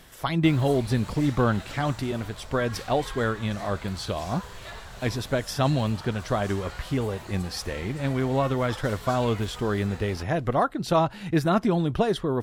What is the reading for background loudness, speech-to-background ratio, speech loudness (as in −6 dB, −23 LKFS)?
−42.0 LKFS, 15.5 dB, −26.5 LKFS